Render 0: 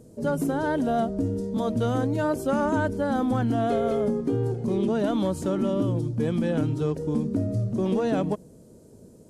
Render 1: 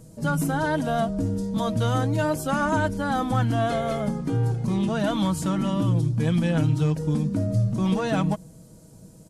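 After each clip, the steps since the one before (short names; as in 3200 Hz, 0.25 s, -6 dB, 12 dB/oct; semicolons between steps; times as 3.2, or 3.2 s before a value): bell 400 Hz -13.5 dB 1.2 oct; comb 6.2 ms, depth 48%; gain +6 dB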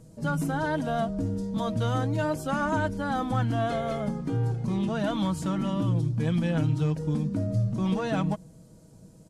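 high shelf 9200 Hz -9.5 dB; gain -3.5 dB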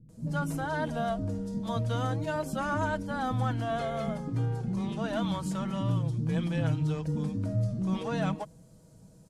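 bands offset in time lows, highs 90 ms, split 310 Hz; gain -2.5 dB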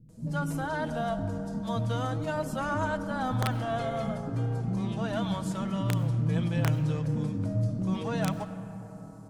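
wrapped overs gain 18.5 dB; reverb RT60 4.6 s, pre-delay 50 ms, DRR 11 dB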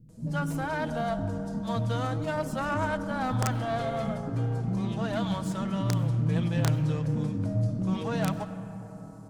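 self-modulated delay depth 0.1 ms; gain +1 dB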